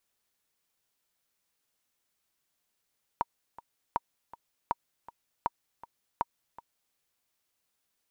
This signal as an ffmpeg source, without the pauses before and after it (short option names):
-f lavfi -i "aevalsrc='pow(10,(-14-18.5*gte(mod(t,2*60/160),60/160))/20)*sin(2*PI*943*mod(t,60/160))*exp(-6.91*mod(t,60/160)/0.03)':d=3.75:s=44100"